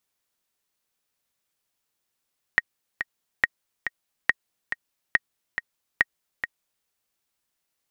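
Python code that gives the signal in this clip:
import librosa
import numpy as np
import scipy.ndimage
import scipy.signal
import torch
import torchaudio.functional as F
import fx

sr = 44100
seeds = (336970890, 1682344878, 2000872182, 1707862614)

y = fx.click_track(sr, bpm=140, beats=2, bars=5, hz=1880.0, accent_db=9.0, level_db=-4.5)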